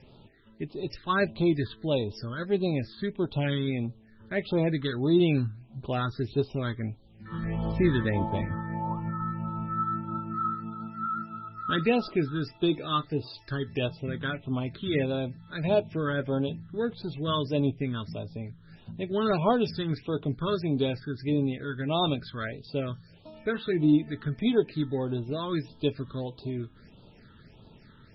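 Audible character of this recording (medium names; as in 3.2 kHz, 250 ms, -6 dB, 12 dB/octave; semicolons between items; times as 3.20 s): a quantiser's noise floor 12-bit, dither none; phasing stages 8, 1.6 Hz, lowest notch 690–1900 Hz; MP3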